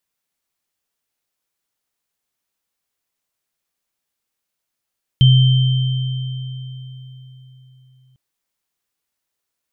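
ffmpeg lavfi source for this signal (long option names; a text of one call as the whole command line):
ffmpeg -f lavfi -i "aevalsrc='0.501*pow(10,-3*t/3.94)*sin(2*PI*129*t)+0.15*pow(10,-3*t/3.33)*sin(2*PI*3120*t)':duration=2.95:sample_rate=44100" out.wav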